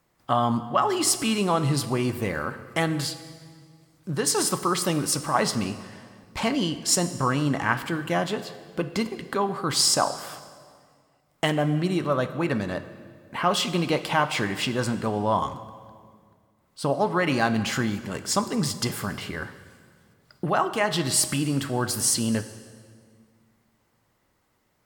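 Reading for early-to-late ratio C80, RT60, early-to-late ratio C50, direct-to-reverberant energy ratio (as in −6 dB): 13.5 dB, 1.9 s, 12.5 dB, 11.0 dB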